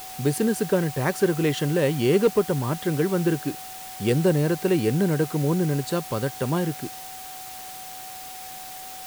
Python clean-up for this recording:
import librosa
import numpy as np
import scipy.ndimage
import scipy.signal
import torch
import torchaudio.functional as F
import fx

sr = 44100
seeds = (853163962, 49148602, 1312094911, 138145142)

y = fx.fix_declip(x, sr, threshold_db=-11.0)
y = fx.notch(y, sr, hz=750.0, q=30.0)
y = fx.noise_reduce(y, sr, print_start_s=6.89, print_end_s=7.39, reduce_db=30.0)